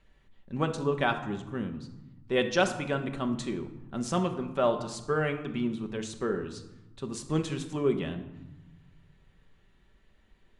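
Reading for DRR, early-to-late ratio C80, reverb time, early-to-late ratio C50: 5.0 dB, 13.0 dB, 1.0 s, 11.0 dB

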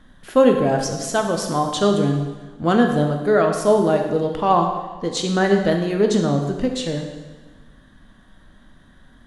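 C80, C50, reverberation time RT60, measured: 6.5 dB, 5.5 dB, 1.3 s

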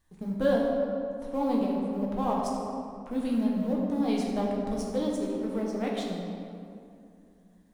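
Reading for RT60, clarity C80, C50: 2.6 s, 2.0 dB, 0.5 dB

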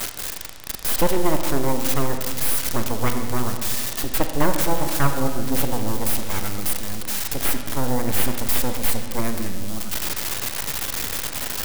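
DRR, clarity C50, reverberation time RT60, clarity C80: 5.5 dB, 6.5 dB, 2.0 s, 7.5 dB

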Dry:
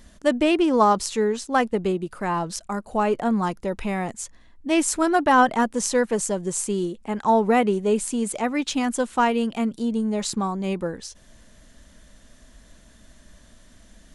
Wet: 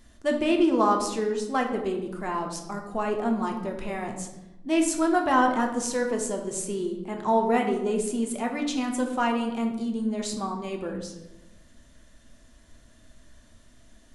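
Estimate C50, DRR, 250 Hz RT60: 7.0 dB, 2.0 dB, 1.3 s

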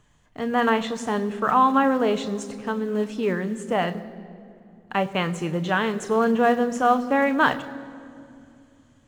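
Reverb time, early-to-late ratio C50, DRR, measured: 2.5 s, 16.0 dB, 9.0 dB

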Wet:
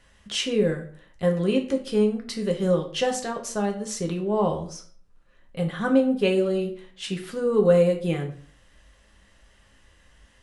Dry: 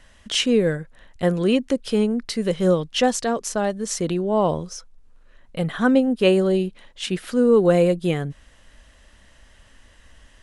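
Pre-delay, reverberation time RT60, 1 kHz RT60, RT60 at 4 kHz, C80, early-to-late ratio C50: 3 ms, 0.50 s, 0.50 s, 0.35 s, 14.0 dB, 10.5 dB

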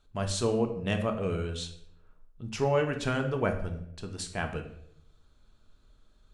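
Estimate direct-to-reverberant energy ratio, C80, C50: 4.5 dB, 12.5 dB, 9.0 dB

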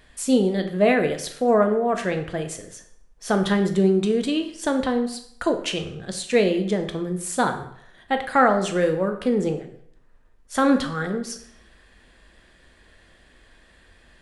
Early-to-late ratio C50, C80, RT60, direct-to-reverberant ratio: 10.0 dB, 12.5 dB, 0.70 s, 5.5 dB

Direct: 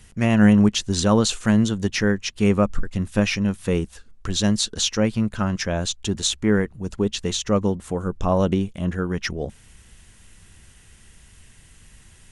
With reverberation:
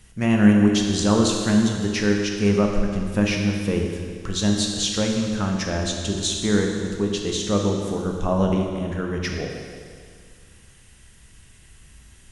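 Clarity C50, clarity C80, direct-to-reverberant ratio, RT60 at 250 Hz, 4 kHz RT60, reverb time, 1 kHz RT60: 2.5 dB, 4.0 dB, 1.0 dB, 2.0 s, 2.0 s, 2.0 s, 2.0 s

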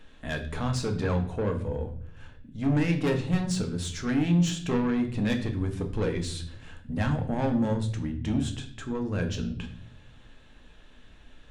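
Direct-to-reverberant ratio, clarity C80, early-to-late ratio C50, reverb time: 4.0 dB, 14.5 dB, 11.0 dB, 0.55 s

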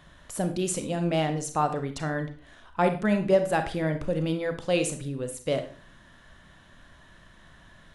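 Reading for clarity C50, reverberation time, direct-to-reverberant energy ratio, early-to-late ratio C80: 10.5 dB, 0.40 s, 7.0 dB, 15.5 dB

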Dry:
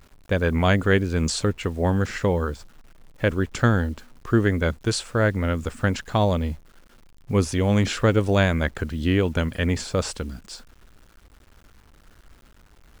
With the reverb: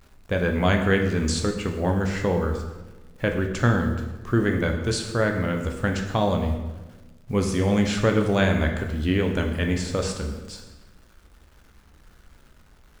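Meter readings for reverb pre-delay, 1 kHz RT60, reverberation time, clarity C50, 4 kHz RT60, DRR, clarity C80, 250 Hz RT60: 10 ms, 1.1 s, 1.2 s, 6.5 dB, 0.90 s, 3.0 dB, 8.5 dB, 1.4 s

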